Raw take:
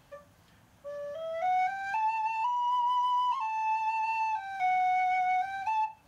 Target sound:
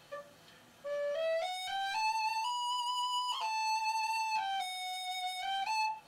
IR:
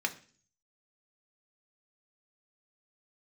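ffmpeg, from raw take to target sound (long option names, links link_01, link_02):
-filter_complex "[0:a]acontrast=34,volume=32.5dB,asoftclip=hard,volume=-32.5dB[link_01];[1:a]atrim=start_sample=2205,asetrate=74970,aresample=44100[link_02];[link_01][link_02]afir=irnorm=-1:irlink=0"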